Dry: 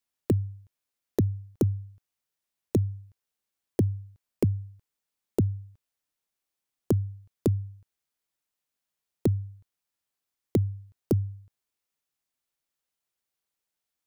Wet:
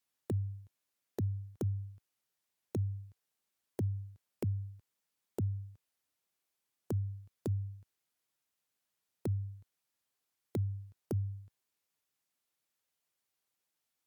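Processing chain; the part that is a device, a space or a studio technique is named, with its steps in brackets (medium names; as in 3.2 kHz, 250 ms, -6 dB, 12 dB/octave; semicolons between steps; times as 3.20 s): podcast mastering chain (high-pass 73 Hz 12 dB/octave; compression 3:1, threshold -29 dBFS, peak gain reduction 7.5 dB; peak limiter -25 dBFS, peak gain reduction 10 dB; trim +1 dB; MP3 96 kbps 48 kHz)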